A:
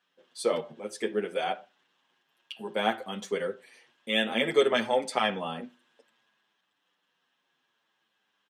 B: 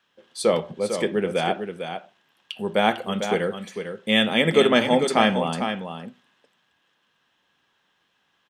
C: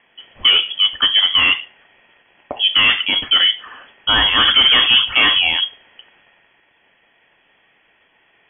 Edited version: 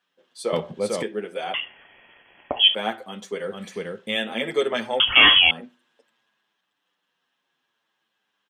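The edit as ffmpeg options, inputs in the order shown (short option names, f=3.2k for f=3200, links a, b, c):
-filter_complex "[1:a]asplit=2[a][b];[2:a]asplit=2[c][d];[0:a]asplit=5[e][f][g][h][i];[e]atrim=end=0.532[j];[a]atrim=start=0.528:end=1.032[k];[f]atrim=start=1.028:end=1.542[l];[c]atrim=start=1.538:end=2.752[m];[g]atrim=start=2.748:end=3.63[n];[b]atrim=start=3.39:end=4.22[o];[h]atrim=start=3.98:end=5.002[p];[d]atrim=start=4.998:end=5.512[q];[i]atrim=start=5.508[r];[j][k]acrossfade=d=0.004:c1=hsin:c2=hsin[s];[s][l]acrossfade=d=0.004:c1=hsin:c2=hsin[t];[t][m]acrossfade=d=0.004:c1=hsin:c2=hsin[u];[u][n]acrossfade=d=0.004:c1=hsin:c2=hsin[v];[v][o]acrossfade=d=0.24:c1=tri:c2=tri[w];[w][p]acrossfade=d=0.24:c1=tri:c2=tri[x];[x][q]acrossfade=d=0.004:c1=hsin:c2=hsin[y];[y][r]acrossfade=d=0.004:c1=hsin:c2=hsin"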